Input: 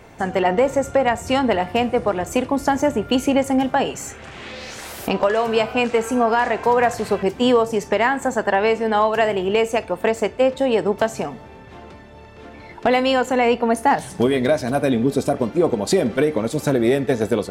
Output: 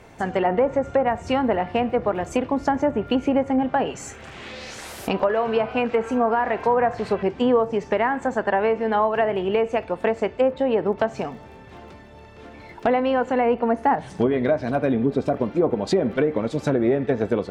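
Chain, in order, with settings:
treble cut that deepens with the level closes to 1,500 Hz, closed at −13 dBFS
surface crackle 16 per second −43 dBFS
level −2.5 dB

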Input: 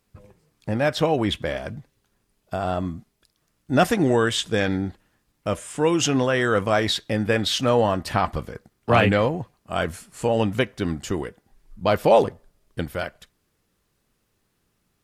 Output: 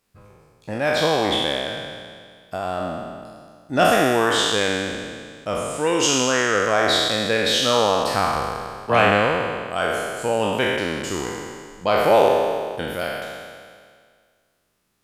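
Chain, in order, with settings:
peak hold with a decay on every bin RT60 1.94 s
low-shelf EQ 220 Hz −9 dB
level −1 dB

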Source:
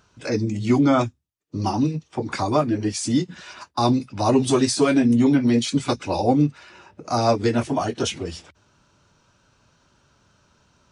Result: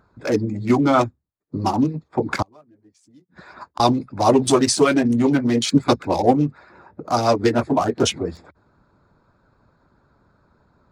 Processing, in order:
adaptive Wiener filter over 15 samples
0:02.42–0:03.80: gate with flip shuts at −22 dBFS, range −34 dB
harmonic and percussive parts rebalanced harmonic −8 dB
level +6.5 dB

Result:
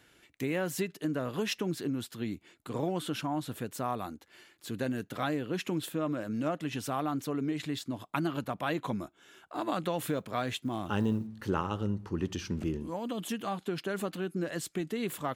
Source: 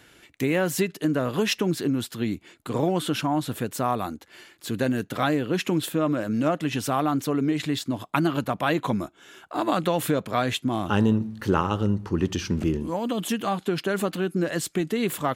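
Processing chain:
0:09.99–0:11.27: log-companded quantiser 8 bits
level −8.5 dB

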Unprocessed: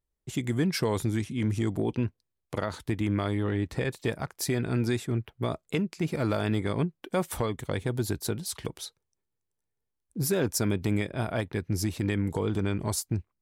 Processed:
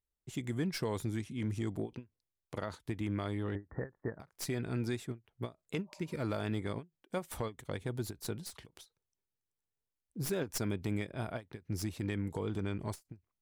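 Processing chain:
stylus tracing distortion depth 0.034 ms
0:03.55–0:04.20: Butterworth low-pass 1,900 Hz 96 dB per octave
0:05.86–0:06.16: healed spectral selection 540–1,200 Hz before
every ending faded ahead of time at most 310 dB per second
level −8 dB

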